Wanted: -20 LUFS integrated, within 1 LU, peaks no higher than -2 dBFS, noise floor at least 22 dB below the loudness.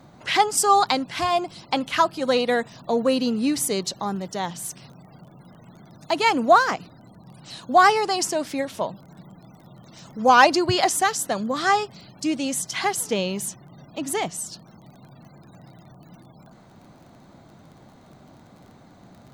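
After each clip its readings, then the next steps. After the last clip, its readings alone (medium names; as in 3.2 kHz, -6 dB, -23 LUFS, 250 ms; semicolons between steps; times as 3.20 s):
tick rate 22 per s; loudness -22.0 LUFS; peak level -2.0 dBFS; loudness target -20.0 LUFS
-> de-click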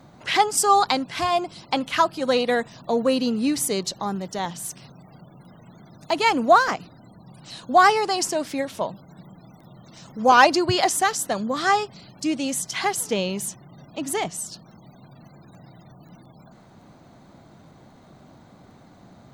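tick rate 0.21 per s; loudness -22.0 LUFS; peak level -2.0 dBFS; loudness target -20.0 LUFS
-> trim +2 dB; peak limiter -2 dBFS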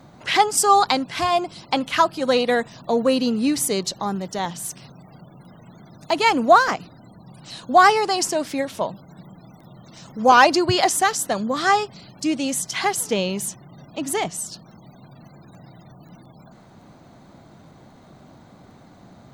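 loudness -20.0 LUFS; peak level -2.0 dBFS; noise floor -49 dBFS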